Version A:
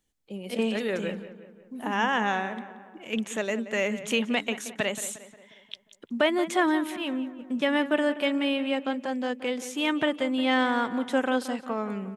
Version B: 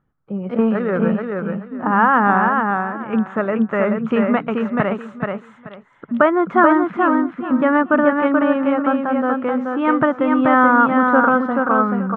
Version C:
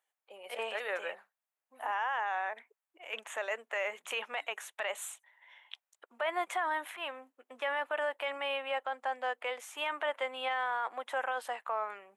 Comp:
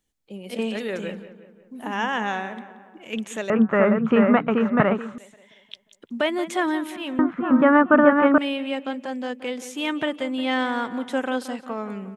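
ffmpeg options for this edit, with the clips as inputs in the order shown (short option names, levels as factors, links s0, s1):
-filter_complex "[1:a]asplit=2[s0][s1];[0:a]asplit=3[s2][s3][s4];[s2]atrim=end=3.502[s5];[s0]atrim=start=3.498:end=5.182[s6];[s3]atrim=start=5.178:end=7.192[s7];[s1]atrim=start=7.188:end=8.382[s8];[s4]atrim=start=8.378[s9];[s5][s6]acrossfade=d=0.004:c1=hsin:c2=hsin[s10];[s10][s7]acrossfade=d=0.004:c1=hsin:c2=hsin[s11];[s11][s8]acrossfade=d=0.004:c1=hsin:c2=hsin[s12];[s12][s9]acrossfade=d=0.004:c1=hsin:c2=hsin"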